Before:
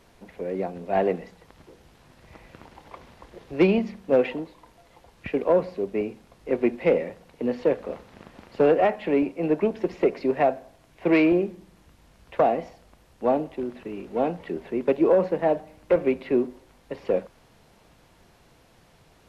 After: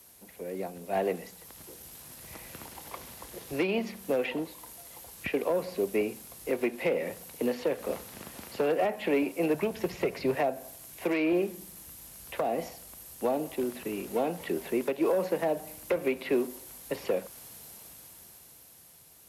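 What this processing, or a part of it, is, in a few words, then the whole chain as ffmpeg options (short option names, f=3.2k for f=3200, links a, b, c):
FM broadcast chain: -filter_complex "[0:a]asettb=1/sr,asplit=3[a][b][c];[a]atrim=end=9.544[d];[b]atrim=start=9.54:end=10.35,asetpts=PTS-STARTPTS,afade=t=in:d=0.004:c=qsin,afade=t=out:st=0.806:d=0.004:c=qsin,lowshelf=f=190:t=q:w=1.5:g=11[e];[c]atrim=start=10.346[f];[d][e]acrossfade=d=0.004:c1=hsin:c2=qsin[g];[g][f]acrossfade=d=0.004:c1=qsin:c2=hsin,highpass=56,dynaudnorm=f=140:g=21:m=11.5dB,acrossover=split=270|730|3900[h][i][j][k];[h]acompressor=threshold=-31dB:ratio=4[l];[i]acompressor=threshold=-17dB:ratio=4[m];[j]acompressor=threshold=-25dB:ratio=4[n];[k]acompressor=threshold=-55dB:ratio=4[o];[l][m][n][o]amix=inputs=4:normalize=0,aemphasis=mode=production:type=50fm,alimiter=limit=-10.5dB:level=0:latency=1:release=230,asoftclip=type=hard:threshold=-11.5dB,lowpass=f=15k:w=0.5412,lowpass=f=15k:w=1.3066,aemphasis=mode=production:type=50fm,volume=-7dB"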